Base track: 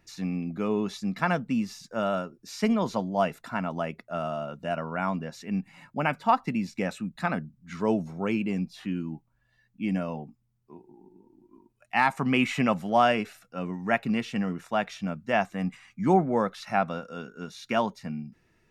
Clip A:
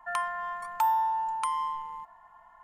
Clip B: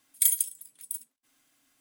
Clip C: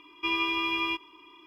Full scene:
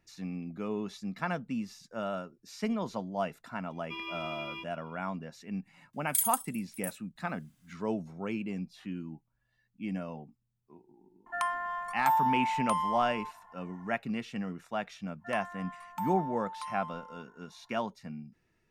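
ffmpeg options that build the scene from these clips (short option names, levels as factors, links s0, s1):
-filter_complex "[1:a]asplit=2[s0][s1];[0:a]volume=0.422[s2];[2:a]acontrast=34[s3];[3:a]atrim=end=1.46,asetpts=PTS-STARTPTS,volume=0.251,afade=t=in:d=0.004:c=hsin,afade=t=out:st=1.456:d=0.004:c=hsin,adelay=3670[s4];[s3]atrim=end=1.8,asetpts=PTS-STARTPTS,volume=0.299,afade=t=in:d=0.004:c=hsin,afade=t=out:st=1.796:d=0.004:c=hsin,adelay=261513S[s5];[s0]atrim=end=2.63,asetpts=PTS-STARTPTS,volume=0.891,afade=t=in:d=0.004:c=hsin,afade=t=out:st=2.626:d=0.004:c=hsin,adelay=11260[s6];[s1]atrim=end=2.63,asetpts=PTS-STARTPTS,volume=0.282,afade=t=in:d=0.1,afade=t=out:st=2.53:d=0.1,adelay=15180[s7];[s2][s4][s5][s6][s7]amix=inputs=5:normalize=0"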